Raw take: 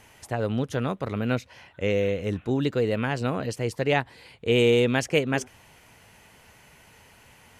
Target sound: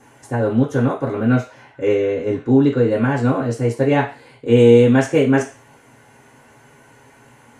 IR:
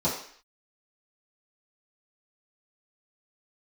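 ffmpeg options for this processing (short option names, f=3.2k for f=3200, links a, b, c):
-filter_complex "[0:a]asettb=1/sr,asplit=3[a][b][c];[a]atrim=end=1.954[d];[b]atrim=start=1.95:end=2.89,asetpts=PTS-STARTPTS,afade=t=in:d=0.004:c=qsin,afade=t=out:st=0.936:d=0.004:c=qsin,lowpass=6.6k[e];[c]atrim=start=2.886[f];[d][e]acrossfade=d=0.004:c1=hsin:c2=qsin[g];[g][f]acrossfade=d=0.004:c1=qsin:c2=hsin[h];[1:a]atrim=start_sample=2205,asetrate=70560,aresample=44100[i];[h][i]afir=irnorm=-1:irlink=0,volume=-4dB"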